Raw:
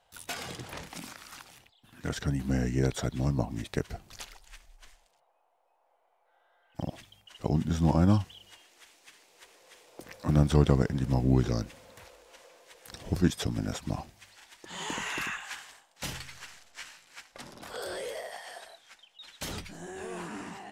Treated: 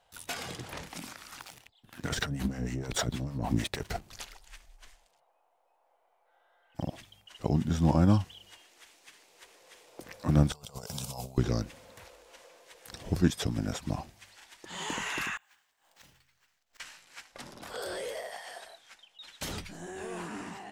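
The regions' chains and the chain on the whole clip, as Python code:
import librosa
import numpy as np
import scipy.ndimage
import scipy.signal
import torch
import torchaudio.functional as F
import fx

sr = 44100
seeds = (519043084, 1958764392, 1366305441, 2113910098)

y = fx.chain(x, sr, fx.leveller(passes=2),
    fx.over_compress(threshold_db=-29.0, ratio=-1.0),
    fx.harmonic_tremolo(hz=6.5, depth_pct=70, crossover_hz=550.0), at=(1.4, 4.02))
y = fx.chain(y, sr, fx.tilt_eq(slope=4.0),
    fx.over_compress(threshold_db=-37.0, ratio=-0.5),
    fx.fixed_phaser(hz=750.0, stages=4), at=(10.52, 11.38))
y = fx.chain(y, sr, fx.resample_bad(factor=2, down='none', up='hold'),
    fx.gate_flip(shuts_db=-42.0, range_db=-24), at=(15.37, 16.8))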